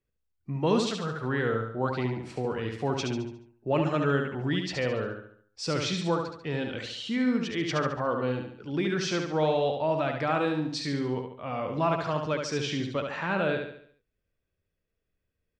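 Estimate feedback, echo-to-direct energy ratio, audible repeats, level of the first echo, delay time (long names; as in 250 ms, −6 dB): 45%, −4.0 dB, 5, −5.0 dB, 71 ms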